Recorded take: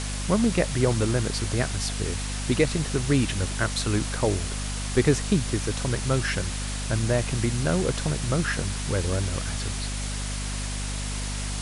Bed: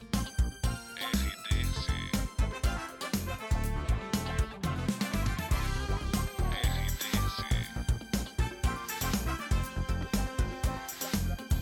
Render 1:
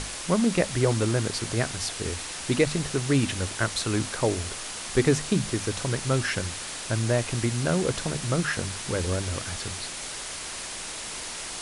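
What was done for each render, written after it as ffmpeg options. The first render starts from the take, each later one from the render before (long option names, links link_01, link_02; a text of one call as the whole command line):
ffmpeg -i in.wav -af "bandreject=frequency=50:width_type=h:width=6,bandreject=frequency=100:width_type=h:width=6,bandreject=frequency=150:width_type=h:width=6,bandreject=frequency=200:width_type=h:width=6,bandreject=frequency=250:width_type=h:width=6" out.wav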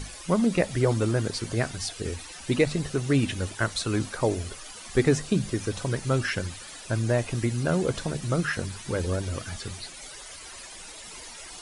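ffmpeg -i in.wav -af "afftdn=noise_reduction=13:noise_floor=-36" out.wav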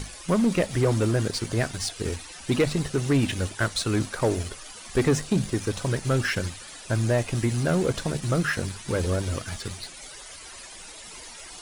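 ffmpeg -i in.wav -filter_complex "[0:a]asplit=2[link_01][link_02];[link_02]acrusher=bits=4:mix=0:aa=0.5,volume=-8dB[link_03];[link_01][link_03]amix=inputs=2:normalize=0,asoftclip=type=tanh:threshold=-14dB" out.wav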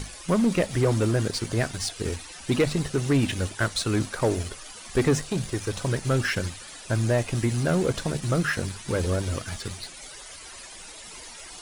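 ffmpeg -i in.wav -filter_complex "[0:a]asettb=1/sr,asplit=3[link_01][link_02][link_03];[link_01]atrim=end=5.214[link_04];[link_02]atrim=start=5.21:end=5.72,asetpts=PTS-STARTPTS,afade=type=in:duration=0.004:curve=qsin,afade=type=out:start_time=0.506:duration=0.004:curve=qsin,equalizer=frequency=220:width=1.5:gain=-7.5[link_05];[link_03]atrim=start=5.716[link_06];[link_04][link_05]acrossfade=duration=0.004:curve1=hsin:curve2=qsin[link_07];[link_07][link_06]acrossfade=duration=0.004:curve1=qsin:curve2=hsin" out.wav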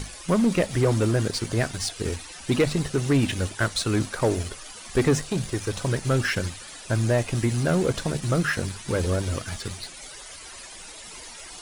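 ffmpeg -i in.wav -af "volume=1dB" out.wav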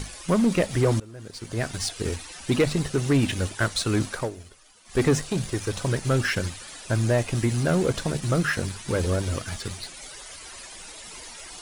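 ffmpeg -i in.wav -filter_complex "[0:a]asplit=4[link_01][link_02][link_03][link_04];[link_01]atrim=end=1,asetpts=PTS-STARTPTS,afade=type=out:start_time=0.996:duration=0.004:curve=hsin:silence=0.0707946[link_05];[link_02]atrim=start=1:end=4.31,asetpts=PTS-STARTPTS,afade=type=in:duration=0.75:curve=qua:silence=0.0707946,afade=type=out:start_time=3.15:duration=0.16:silence=0.188365[link_06];[link_03]atrim=start=4.31:end=4.85,asetpts=PTS-STARTPTS,volume=-14.5dB[link_07];[link_04]atrim=start=4.85,asetpts=PTS-STARTPTS,afade=type=in:duration=0.16:silence=0.188365[link_08];[link_05][link_06][link_07][link_08]concat=n=4:v=0:a=1" out.wav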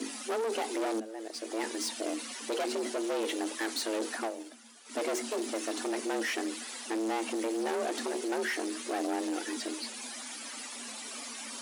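ffmpeg -i in.wav -af "asoftclip=type=tanh:threshold=-30dB,afreqshift=220" out.wav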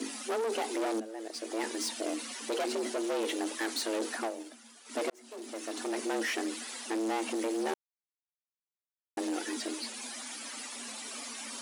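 ffmpeg -i in.wav -filter_complex "[0:a]asplit=4[link_01][link_02][link_03][link_04];[link_01]atrim=end=5.1,asetpts=PTS-STARTPTS,afade=type=out:start_time=5.096:duration=0.004:curve=hsin[link_05];[link_02]atrim=start=5.1:end=7.74,asetpts=PTS-STARTPTS,afade=type=in:duration=0.92,afade=type=out:start_time=2.636:duration=0.004:curve=hsin[link_06];[link_03]atrim=start=7.74:end=9.17,asetpts=PTS-STARTPTS,volume=0[link_07];[link_04]atrim=start=9.17,asetpts=PTS-STARTPTS,afade=type=in:duration=0.004:curve=hsin[link_08];[link_05][link_06][link_07][link_08]concat=n=4:v=0:a=1" out.wav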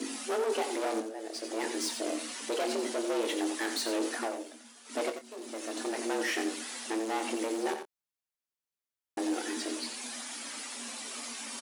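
ffmpeg -i in.wav -filter_complex "[0:a]asplit=2[link_01][link_02];[link_02]adelay=25,volume=-9dB[link_03];[link_01][link_03]amix=inputs=2:normalize=0,asplit=2[link_04][link_05];[link_05]aecho=0:1:89:0.376[link_06];[link_04][link_06]amix=inputs=2:normalize=0" out.wav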